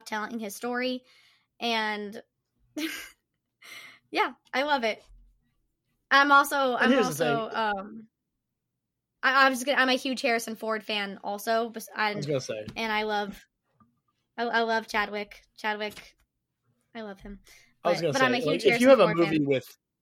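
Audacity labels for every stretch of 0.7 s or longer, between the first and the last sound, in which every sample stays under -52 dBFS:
5.230000	6.110000	silence
8.050000	9.230000	silence
16.110000	16.950000	silence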